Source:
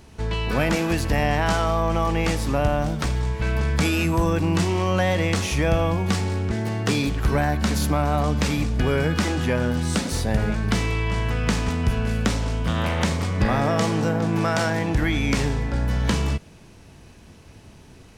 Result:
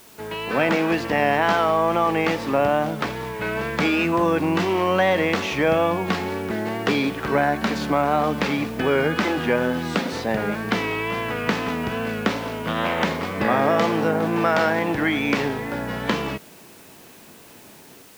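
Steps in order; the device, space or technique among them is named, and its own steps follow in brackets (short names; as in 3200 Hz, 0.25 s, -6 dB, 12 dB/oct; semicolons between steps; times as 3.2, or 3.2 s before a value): dictaphone (BPF 260–3200 Hz; AGC gain up to 4.5 dB; wow and flutter; white noise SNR 27 dB)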